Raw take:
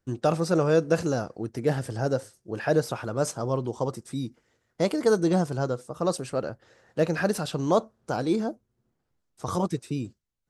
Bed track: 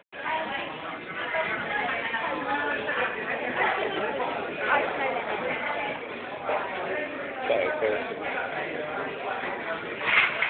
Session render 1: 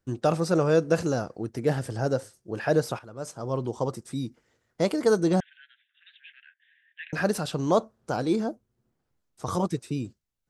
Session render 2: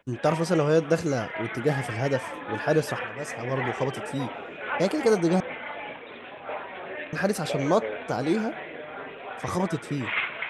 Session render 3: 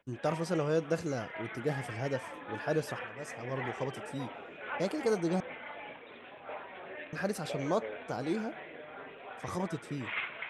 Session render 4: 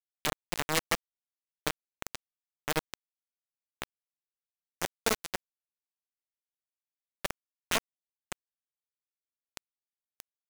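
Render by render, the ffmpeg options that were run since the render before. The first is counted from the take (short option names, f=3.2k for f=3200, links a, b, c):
-filter_complex "[0:a]asettb=1/sr,asplit=3[a][b][c];[a]atrim=end=5.404[d];[b]atrim=start=5.4:end=7.13,asetpts=PTS-STARTPTS,afade=t=in:d=0.004:c=qsin,afade=t=out:st=1.726:d=0.004:c=qsin,asuperpass=centerf=2400:order=20:qfactor=1.2[e];[c]atrim=start=7.126[f];[d][e]acrossfade=d=0.004:c1=hsin:c2=qsin[g];[g][f]acrossfade=d=0.004:c1=qsin:c2=hsin,asplit=2[h][i];[h]atrim=end=2.99,asetpts=PTS-STARTPTS,afade=t=out:st=2.986:d=0.004:c=hsin:silence=0.211349[j];[i]atrim=start=2.99,asetpts=PTS-STARTPTS,afade=t=in:d=0.63:c=qua:silence=0.211349[k];[j][k]concat=n=2:v=0:a=1"
-filter_complex "[1:a]volume=-6.5dB[a];[0:a][a]amix=inputs=2:normalize=0"
-af "volume=-8.5dB"
-af "aeval=exprs='(mod(10*val(0)+1,2)-1)/10':c=same,acrusher=bits=3:mix=0:aa=0.000001"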